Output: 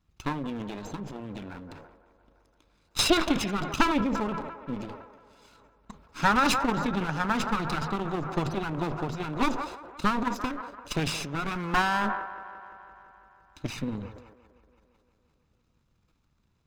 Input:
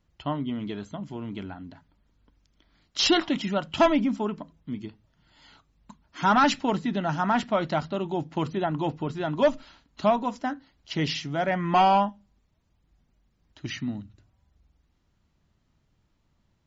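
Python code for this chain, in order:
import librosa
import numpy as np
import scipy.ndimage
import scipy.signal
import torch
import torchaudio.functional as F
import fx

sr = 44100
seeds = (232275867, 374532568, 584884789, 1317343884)

y = fx.lower_of_two(x, sr, delay_ms=0.8)
y = fx.echo_wet_bandpass(y, sr, ms=171, feedback_pct=71, hz=820.0, wet_db=-12.5)
y = fx.transient(y, sr, attack_db=7, sustain_db=11)
y = F.gain(torch.from_numpy(y), -3.5).numpy()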